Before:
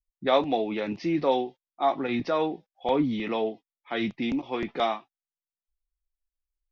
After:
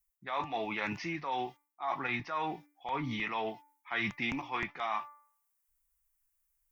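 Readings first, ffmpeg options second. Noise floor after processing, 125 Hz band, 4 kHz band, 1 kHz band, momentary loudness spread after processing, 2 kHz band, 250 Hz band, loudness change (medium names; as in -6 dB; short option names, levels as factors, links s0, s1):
-80 dBFS, -5.0 dB, -7.0 dB, -5.5 dB, 7 LU, +1.5 dB, -12.0 dB, -8.0 dB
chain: -filter_complex "[0:a]bandreject=f=292.9:t=h:w=4,bandreject=f=585.8:t=h:w=4,bandreject=f=878.7:t=h:w=4,bandreject=f=1171.6:t=h:w=4,bandreject=f=1464.5:t=h:w=4,bandreject=f=1757.4:t=h:w=4,bandreject=f=2050.3:t=h:w=4,bandreject=f=2343.2:t=h:w=4,acrossover=split=4900[s0][s1];[s1]acompressor=threshold=0.00178:ratio=4:attack=1:release=60[s2];[s0][s2]amix=inputs=2:normalize=0,equalizer=f=125:t=o:w=1:g=4,equalizer=f=250:t=o:w=1:g=-7,equalizer=f=500:t=o:w=1:g=-9,equalizer=f=1000:t=o:w=1:g=9,equalizer=f=2000:t=o:w=1:g=5,equalizer=f=4000:t=o:w=1:g=-10,areverse,acompressor=threshold=0.0224:ratio=16,areverse,crystalizer=i=5:c=0"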